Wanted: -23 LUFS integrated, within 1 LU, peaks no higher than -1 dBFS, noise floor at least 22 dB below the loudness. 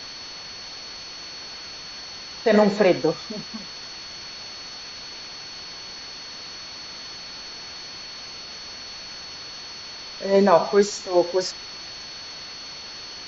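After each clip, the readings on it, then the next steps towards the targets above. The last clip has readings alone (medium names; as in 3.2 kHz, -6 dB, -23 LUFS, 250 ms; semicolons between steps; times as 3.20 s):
steady tone 4.4 kHz; tone level -37 dBFS; noise floor -38 dBFS; noise floor target -49 dBFS; loudness -26.5 LUFS; peak level -3.0 dBFS; loudness target -23.0 LUFS
-> band-stop 4.4 kHz, Q 30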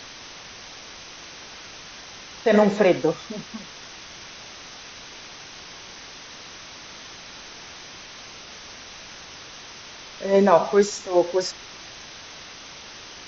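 steady tone not found; noise floor -42 dBFS; noise floor target -43 dBFS
-> noise reduction 6 dB, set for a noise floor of -42 dBFS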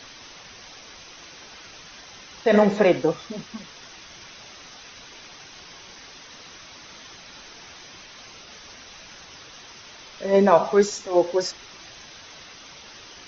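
noise floor -45 dBFS; loudness -21.0 LUFS; peak level -3.0 dBFS; loudness target -23.0 LUFS
-> trim -2 dB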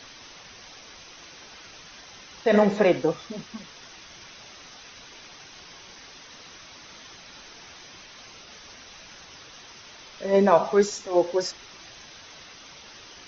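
loudness -23.0 LUFS; peak level -5.0 dBFS; noise floor -47 dBFS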